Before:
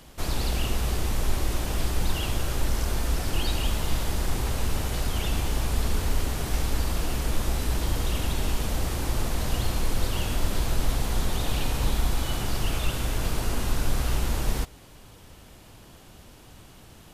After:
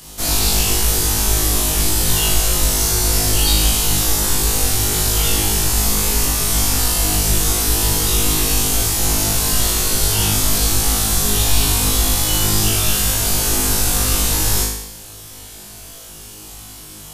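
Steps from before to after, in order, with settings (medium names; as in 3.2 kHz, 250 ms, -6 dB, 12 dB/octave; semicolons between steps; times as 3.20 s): tone controls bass -1 dB, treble +13 dB; band-stop 580 Hz, Q 12; on a send: flutter echo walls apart 3.3 m, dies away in 0.81 s; on the sum: trim +3.5 dB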